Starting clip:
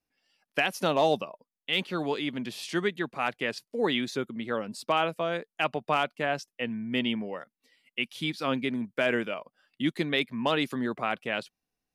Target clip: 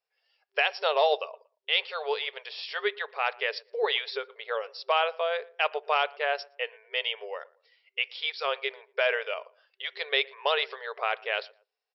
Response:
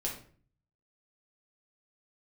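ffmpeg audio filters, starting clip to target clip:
-filter_complex "[0:a]asplit=2[s0][s1];[s1]adelay=116,lowpass=f=1400:p=1,volume=0.0794,asplit=2[s2][s3];[s3]adelay=116,lowpass=f=1400:p=1,volume=0.3[s4];[s0][s2][s4]amix=inputs=3:normalize=0,asplit=2[s5][s6];[1:a]atrim=start_sample=2205,atrim=end_sample=3528,lowpass=2300[s7];[s6][s7]afir=irnorm=-1:irlink=0,volume=0.119[s8];[s5][s8]amix=inputs=2:normalize=0,afftfilt=real='re*between(b*sr/4096,390,5600)':imag='im*between(b*sr/4096,390,5600)':win_size=4096:overlap=0.75,adynamicequalizer=threshold=0.01:dfrequency=2100:dqfactor=0.7:tfrequency=2100:tqfactor=0.7:attack=5:release=100:ratio=0.375:range=2:mode=boostabove:tftype=highshelf"

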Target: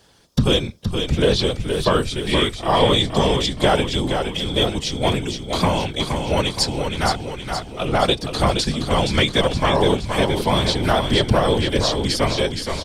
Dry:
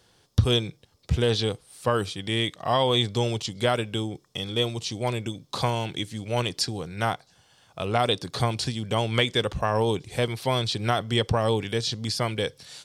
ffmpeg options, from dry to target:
-filter_complex "[0:a]acontrast=81,afftfilt=real='hypot(re,im)*cos(2*PI*random(0))':imag='hypot(re,im)*sin(2*PI*random(1))':win_size=512:overlap=0.75,asplit=8[s0][s1][s2][s3][s4][s5][s6][s7];[s1]adelay=470,afreqshift=-34,volume=0.501[s8];[s2]adelay=940,afreqshift=-68,volume=0.269[s9];[s3]adelay=1410,afreqshift=-102,volume=0.146[s10];[s4]adelay=1880,afreqshift=-136,volume=0.0785[s11];[s5]adelay=2350,afreqshift=-170,volume=0.0427[s12];[s6]adelay=2820,afreqshift=-204,volume=0.0229[s13];[s7]adelay=3290,afreqshift=-238,volume=0.0124[s14];[s0][s8][s9][s10][s11][s12][s13][s14]amix=inputs=8:normalize=0,volume=1.78"

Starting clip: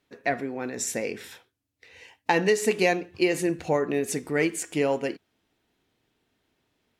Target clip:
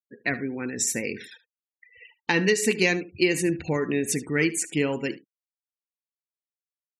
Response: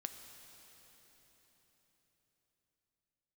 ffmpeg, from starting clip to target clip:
-filter_complex "[0:a]afftfilt=real='re*gte(hypot(re,im),0.01)':imag='im*gte(hypot(re,im),0.01)':win_size=1024:overlap=0.75,equalizer=f=690:w=1.2:g=-14.5,acontrast=26,asplit=2[s0][s1];[s1]aecho=0:1:74:0.126[s2];[s0][s2]amix=inputs=2:normalize=0"

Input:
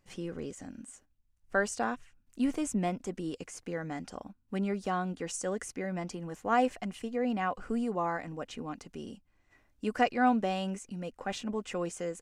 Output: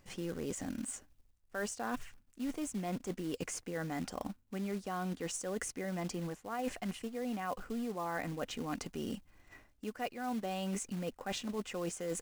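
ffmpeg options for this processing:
-af "areverse,acompressor=threshold=0.00708:ratio=12,areverse,acrusher=bits=4:mode=log:mix=0:aa=0.000001,volume=2.51"

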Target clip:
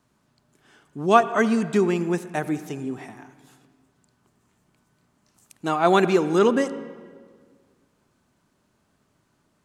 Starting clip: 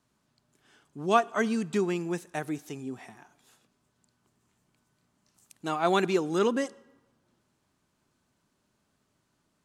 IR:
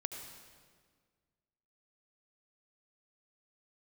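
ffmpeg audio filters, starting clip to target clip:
-filter_complex "[0:a]asplit=2[s0][s1];[1:a]atrim=start_sample=2205,lowpass=2800[s2];[s1][s2]afir=irnorm=-1:irlink=0,volume=0.531[s3];[s0][s3]amix=inputs=2:normalize=0,volume=1.58"

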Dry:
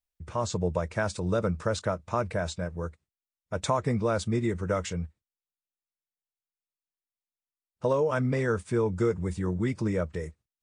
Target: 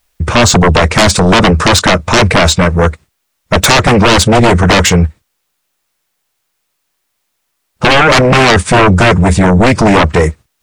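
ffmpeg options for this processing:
-af "equalizer=f=1300:t=o:w=2.6:g=3,aeval=exprs='0.316*sin(PI/2*7.08*val(0)/0.316)':c=same,volume=2.24"

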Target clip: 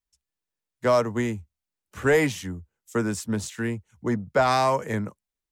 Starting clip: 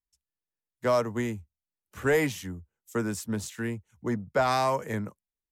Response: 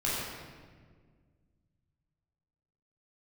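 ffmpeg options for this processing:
-af "equalizer=f=13000:t=o:w=0.38:g=-7.5,volume=1.58"

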